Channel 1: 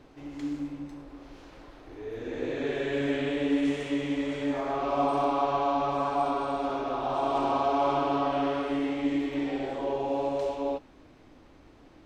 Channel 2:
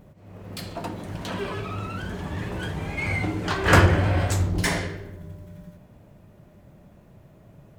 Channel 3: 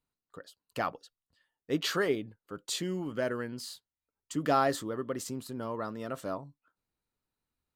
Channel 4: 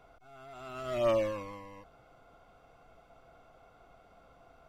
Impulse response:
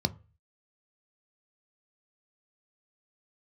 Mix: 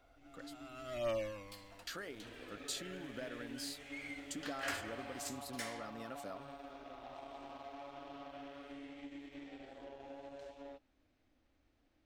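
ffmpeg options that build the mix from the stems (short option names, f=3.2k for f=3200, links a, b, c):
-filter_complex "[0:a]acompressor=threshold=-28dB:ratio=6,aeval=exprs='0.106*(cos(1*acos(clip(val(0)/0.106,-1,1)))-cos(1*PI/2))+0.00596*(cos(7*acos(clip(val(0)/0.106,-1,1)))-cos(7*PI/2))':c=same,volume=-13.5dB[a];[1:a]highpass=f=1.3k:p=1,adelay=950,volume=-16.5dB[b];[2:a]highpass=120,acompressor=threshold=-37dB:ratio=6,volume=-1.5dB,asplit=3[c][d][e];[c]atrim=end=0.7,asetpts=PTS-STARTPTS,afade=t=out:st=0.696:d=0.004:c=hsin[f];[d]atrim=start=0.7:end=1.87,asetpts=PTS-STARTPTS,volume=0[g];[e]atrim=start=1.87,asetpts=PTS-STARTPTS,afade=t=in:d=0.004:c=hsin[h];[f][g][h]concat=n=3:v=0:a=1[i];[3:a]volume=-5dB[j];[a][b][i][j]amix=inputs=4:normalize=0,equalizer=f=160:t=o:w=0.67:g=-9,equalizer=f=400:t=o:w=0.67:g=-8,equalizer=f=1k:t=o:w=0.67:g=-8"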